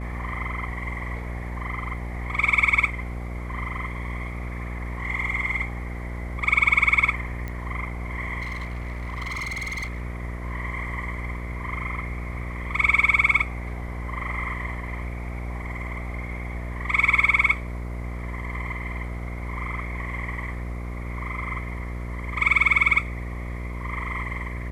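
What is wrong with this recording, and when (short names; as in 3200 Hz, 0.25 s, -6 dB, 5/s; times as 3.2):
buzz 60 Hz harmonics 11 -32 dBFS
7.48 pop -20 dBFS
8.41–10.02 clipped -27 dBFS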